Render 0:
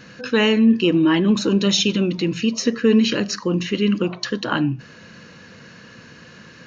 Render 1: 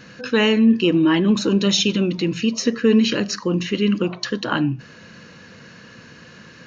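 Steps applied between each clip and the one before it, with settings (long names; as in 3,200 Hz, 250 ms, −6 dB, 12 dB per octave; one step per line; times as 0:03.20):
no processing that can be heard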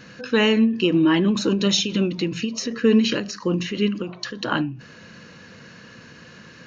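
every ending faded ahead of time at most 110 dB per second
level −1 dB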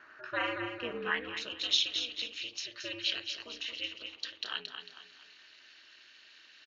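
repeating echo 224 ms, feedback 40%, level −7.5 dB
ring modulation 120 Hz
band-pass filter sweep 1,300 Hz → 3,400 Hz, 0:00.95–0:01.59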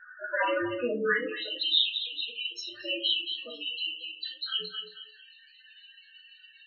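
spectral peaks only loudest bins 8
rectangular room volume 140 cubic metres, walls furnished, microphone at 1.9 metres
level +6.5 dB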